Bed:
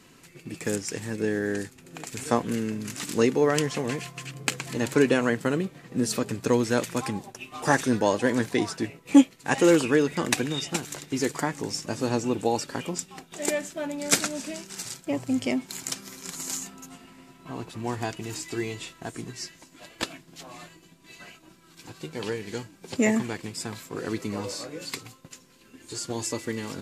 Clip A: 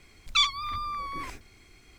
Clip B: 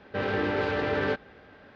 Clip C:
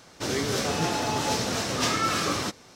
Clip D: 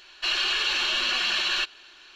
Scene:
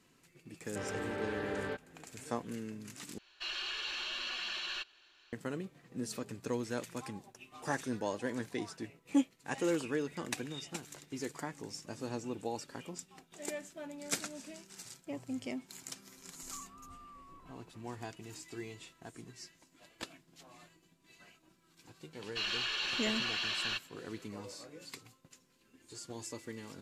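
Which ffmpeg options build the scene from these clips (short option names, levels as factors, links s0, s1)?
-filter_complex "[4:a]asplit=2[s0][s1];[0:a]volume=0.211[s2];[1:a]lowpass=f=1200:w=0.5412,lowpass=f=1200:w=1.3066[s3];[s2]asplit=2[s4][s5];[s4]atrim=end=3.184[s6];[s0]atrim=end=2.15,asetpts=PTS-STARTPTS,volume=0.2[s7];[s5]atrim=start=5.326[s8];[2:a]atrim=end=1.75,asetpts=PTS-STARTPTS,volume=0.266,afade=t=in:d=0.004:c=hsin,afade=t=out:st=1.746:d=0.004:c=hsin,adelay=610[s9];[s3]atrim=end=1.98,asetpts=PTS-STARTPTS,volume=0.126,afade=t=in:d=0.004:c=hsin,afade=t=out:st=1.976:d=0.004:c=hsin,adelay=16160[s10];[s1]atrim=end=2.15,asetpts=PTS-STARTPTS,volume=0.299,afade=t=in:d=0.004:c=hsin,afade=t=out:st=2.146:d=0.004:c=hsin,adelay=22130[s11];[s6][s7]acrossfade=d=0.004:c1=hsin:c2=hsin[s12];[s12][s8]acrossfade=d=0.004:c1=hsin:c2=hsin[s13];[s13][s9][s10][s11]amix=inputs=4:normalize=0"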